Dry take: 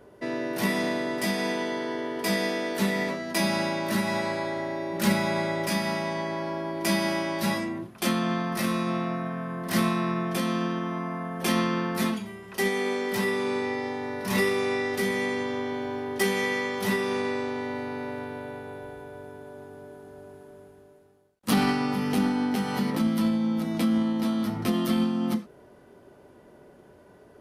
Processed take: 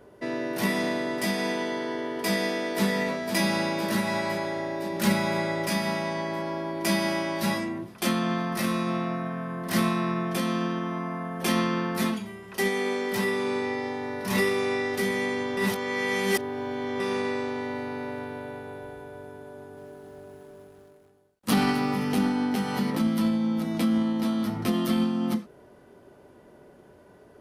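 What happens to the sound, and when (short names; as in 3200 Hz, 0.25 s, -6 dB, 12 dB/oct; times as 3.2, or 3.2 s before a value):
2.25–2.84 echo throw 0.51 s, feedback 75%, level -8.5 dB
15.57–17 reverse
19.51–22.05 lo-fi delay 0.26 s, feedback 35%, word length 8-bit, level -14.5 dB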